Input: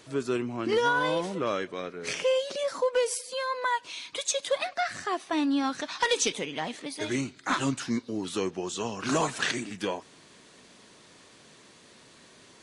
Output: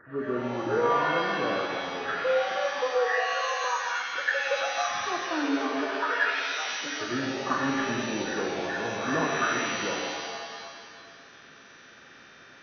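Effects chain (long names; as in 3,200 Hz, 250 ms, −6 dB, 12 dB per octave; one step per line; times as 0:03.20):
hearing-aid frequency compression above 1,100 Hz 4 to 1
0:05.96–0:06.73: high-pass filter 850 Hz 12 dB per octave
reverb with rising layers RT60 1.8 s, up +7 semitones, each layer −2 dB, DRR 2 dB
level −3.5 dB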